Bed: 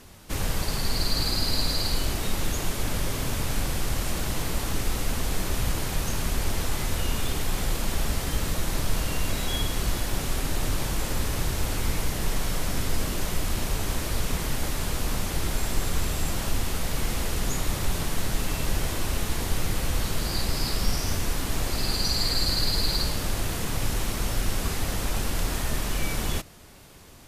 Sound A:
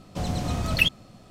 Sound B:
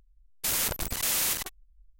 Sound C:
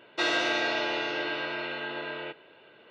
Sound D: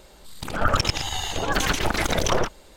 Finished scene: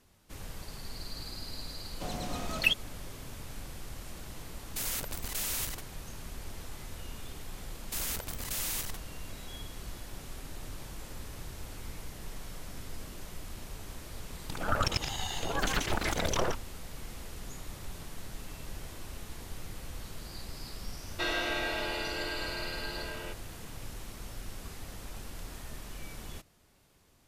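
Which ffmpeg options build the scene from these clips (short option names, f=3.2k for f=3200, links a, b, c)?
-filter_complex "[2:a]asplit=2[a][b];[0:a]volume=-16dB[c];[1:a]equalizer=f=100:t=o:w=1.7:g=-13,atrim=end=1.3,asetpts=PTS-STARTPTS,volume=-5dB,afade=t=in:d=0.004:c=hsin,afade=t=out:st=1.296:d=0.004:c=hsin,adelay=1850[d];[a]atrim=end=1.99,asetpts=PTS-STARTPTS,volume=-7.5dB,afade=t=in:d=0.004:c=hsin,afade=t=out:st=1.986:d=0.004:c=hsin,adelay=4320[e];[b]atrim=end=1.99,asetpts=PTS-STARTPTS,volume=-8dB,afade=t=in:d=0.004:c=hsin,afade=t=out:st=1.986:d=0.004:c=hsin,adelay=7480[f];[4:a]atrim=end=2.76,asetpts=PTS-STARTPTS,volume=-8dB,afade=t=in:d=0.004:c=hsin,afade=t=out:st=2.756:d=0.004:c=hsin,adelay=14070[g];[3:a]atrim=end=2.9,asetpts=PTS-STARTPTS,volume=-5.5dB,afade=t=in:d=0.004:c=hsin,afade=t=out:st=2.896:d=0.004:c=hsin,adelay=21010[h];[c][d][e][f][g][h]amix=inputs=6:normalize=0"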